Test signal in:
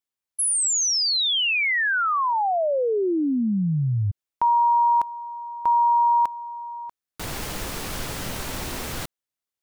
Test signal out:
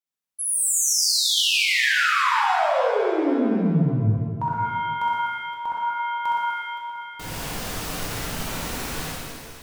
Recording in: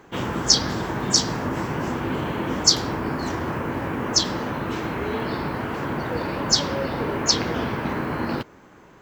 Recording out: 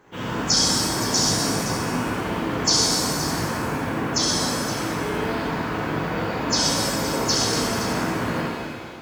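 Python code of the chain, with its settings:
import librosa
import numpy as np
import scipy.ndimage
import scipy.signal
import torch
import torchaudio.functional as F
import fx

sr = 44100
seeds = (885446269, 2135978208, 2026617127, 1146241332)

y = fx.echo_multitap(x, sr, ms=(65, 118, 250, 519), db=(-3.0, -7.0, -11.5, -12.0))
y = fx.rev_shimmer(y, sr, seeds[0], rt60_s=1.6, semitones=7, shimmer_db=-8, drr_db=-4.0)
y = y * 10.0 ** (-7.0 / 20.0)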